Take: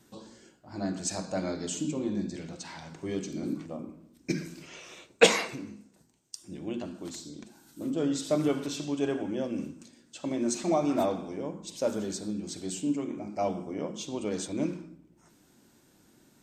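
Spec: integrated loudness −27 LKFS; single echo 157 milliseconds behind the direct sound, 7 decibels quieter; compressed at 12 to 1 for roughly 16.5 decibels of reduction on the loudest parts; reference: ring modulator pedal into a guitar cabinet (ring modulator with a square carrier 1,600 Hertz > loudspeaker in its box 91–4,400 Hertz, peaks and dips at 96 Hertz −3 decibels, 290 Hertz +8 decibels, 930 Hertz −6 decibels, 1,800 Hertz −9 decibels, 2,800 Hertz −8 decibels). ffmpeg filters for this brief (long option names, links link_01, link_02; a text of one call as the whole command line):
ffmpeg -i in.wav -af "acompressor=threshold=-29dB:ratio=12,aecho=1:1:157:0.447,aeval=exprs='val(0)*sgn(sin(2*PI*1600*n/s))':channel_layout=same,highpass=91,equalizer=frequency=96:width_type=q:width=4:gain=-3,equalizer=frequency=290:width_type=q:width=4:gain=8,equalizer=frequency=930:width_type=q:width=4:gain=-6,equalizer=frequency=1800:width_type=q:width=4:gain=-9,equalizer=frequency=2800:width_type=q:width=4:gain=-8,lowpass=frequency=4400:width=0.5412,lowpass=frequency=4400:width=1.3066,volume=12dB" out.wav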